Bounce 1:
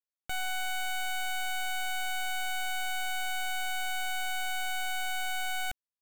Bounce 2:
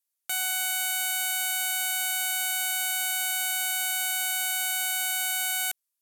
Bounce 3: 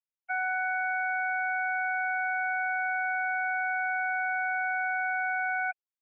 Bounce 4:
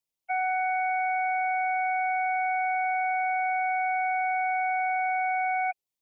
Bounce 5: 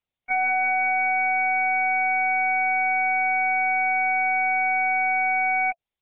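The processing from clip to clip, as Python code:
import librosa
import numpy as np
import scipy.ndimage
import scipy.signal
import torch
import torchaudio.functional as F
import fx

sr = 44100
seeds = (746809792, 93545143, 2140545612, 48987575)

y1 = fx.highpass(x, sr, hz=990.0, slope=6)
y1 = fx.peak_eq(y1, sr, hz=12000.0, db=14.5, octaves=1.6)
y1 = y1 * 10.0 ** (3.0 / 20.0)
y2 = fx.sine_speech(y1, sr)
y2 = scipy.signal.sosfilt(scipy.signal.butter(2, 2500.0, 'lowpass', fs=sr, output='sos'), y2)
y2 = y2 + 0.47 * np.pad(y2, (int(2.9 * sr / 1000.0), 0))[:len(y2)]
y3 = fx.peak_eq(y2, sr, hz=1500.0, db=-14.5, octaves=0.58)
y3 = y3 * 10.0 ** (7.5 / 20.0)
y4 = fx.notch(y3, sr, hz=670.0, q=17.0)
y4 = y4 + 0.35 * np.pad(y4, (int(3.6 * sr / 1000.0), 0))[:len(y4)]
y4 = fx.lpc_vocoder(y4, sr, seeds[0], excitation='pitch_kept', order=10)
y4 = y4 * 10.0 ** (5.0 / 20.0)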